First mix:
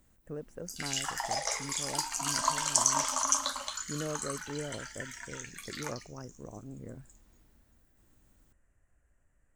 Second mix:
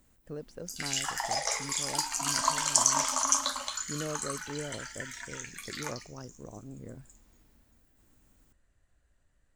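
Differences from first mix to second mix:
speech: remove Butterworth band-reject 4,100 Hz, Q 1.1
reverb: on, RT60 0.50 s

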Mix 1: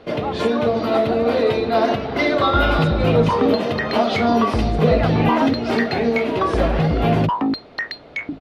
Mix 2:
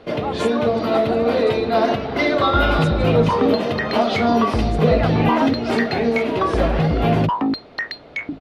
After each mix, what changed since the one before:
speech +7.5 dB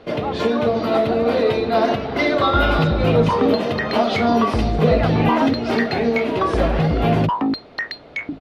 speech: add low-pass filter 3,900 Hz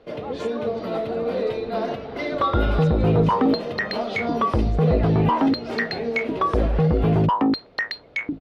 first sound −10.5 dB
master: add parametric band 490 Hz +5 dB 0.58 octaves

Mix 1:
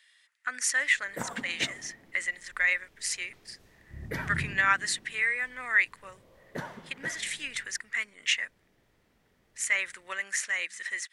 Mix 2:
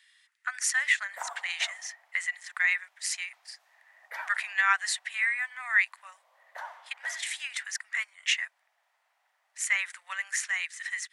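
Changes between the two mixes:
background: add tilt shelving filter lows +6.5 dB, about 1,400 Hz
master: add Butterworth high-pass 710 Hz 48 dB per octave

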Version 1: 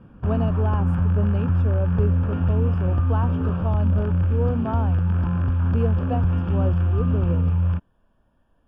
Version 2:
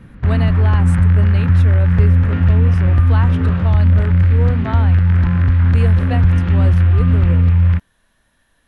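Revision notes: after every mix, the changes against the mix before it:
background: add spectral tilt −2.5 dB per octave
master: remove moving average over 22 samples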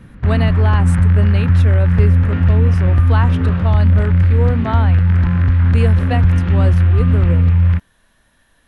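speech +4.0 dB

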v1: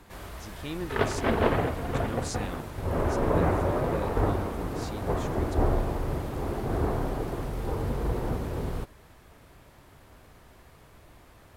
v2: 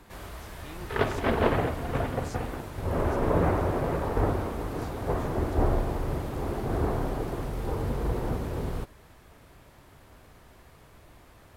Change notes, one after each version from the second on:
speech −10.5 dB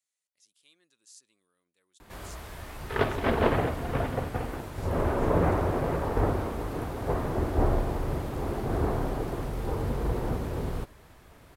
speech: add first difference
background: entry +2.00 s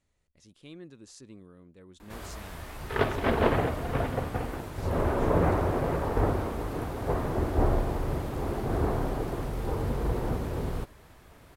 speech: remove first difference

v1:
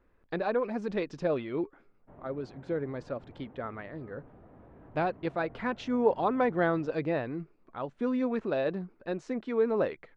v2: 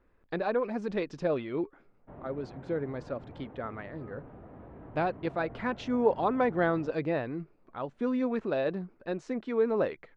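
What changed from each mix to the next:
background +5.5 dB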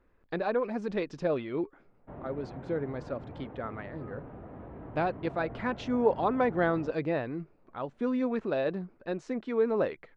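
background +3.5 dB

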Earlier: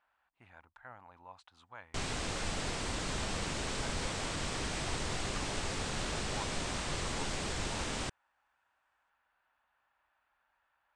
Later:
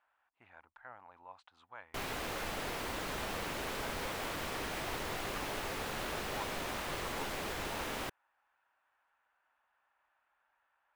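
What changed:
background: remove elliptic low-pass filter 8,500 Hz, stop band 70 dB
master: add bass and treble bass −9 dB, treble −9 dB

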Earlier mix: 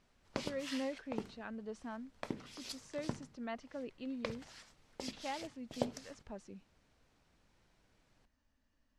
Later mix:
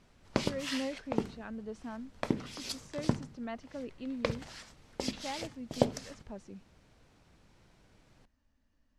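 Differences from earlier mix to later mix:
background +7.0 dB
master: add low-shelf EQ 400 Hz +5 dB

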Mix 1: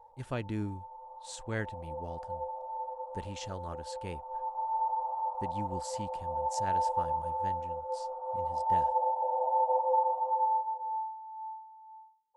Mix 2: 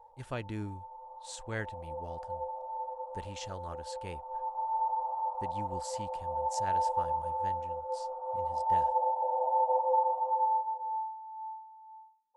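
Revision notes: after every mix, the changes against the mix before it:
speech: add parametric band 210 Hz −4.5 dB 2.1 octaves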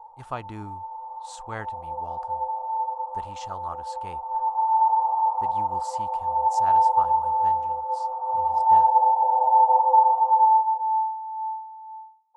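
master: add flat-topped bell 960 Hz +11.5 dB 1.1 octaves

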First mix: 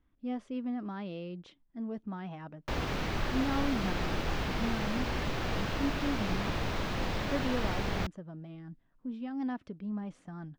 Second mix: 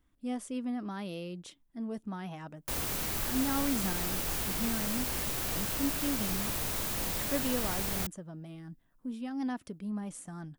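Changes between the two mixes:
background −5.5 dB
master: remove high-frequency loss of the air 230 metres

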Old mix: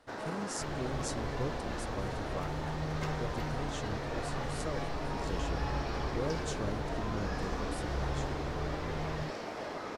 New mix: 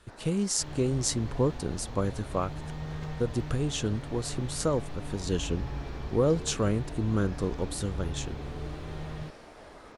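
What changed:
speech +12.0 dB
first sound −10.0 dB

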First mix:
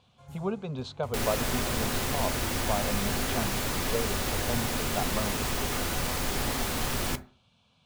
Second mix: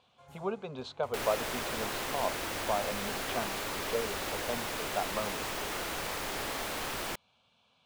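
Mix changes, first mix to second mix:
second sound: send off
master: add bass and treble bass −13 dB, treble −5 dB

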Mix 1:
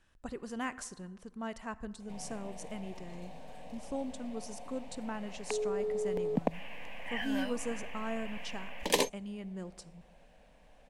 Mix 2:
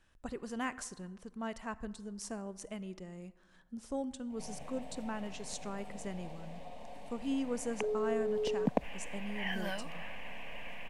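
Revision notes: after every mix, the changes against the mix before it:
background: entry +2.30 s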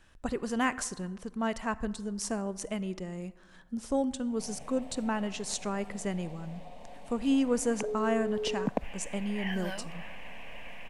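speech +8.5 dB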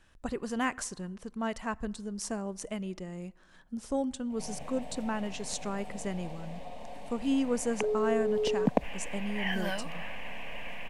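speech: send −9.0 dB
background +4.5 dB

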